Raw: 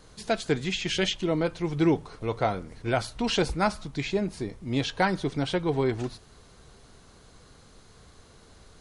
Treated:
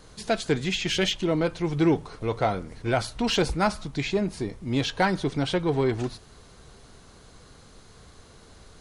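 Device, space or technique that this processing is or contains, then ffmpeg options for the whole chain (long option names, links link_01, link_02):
parallel distortion: -filter_complex "[0:a]asplit=2[link_01][link_02];[link_02]asoftclip=type=hard:threshold=-26.5dB,volume=-8.5dB[link_03];[link_01][link_03]amix=inputs=2:normalize=0"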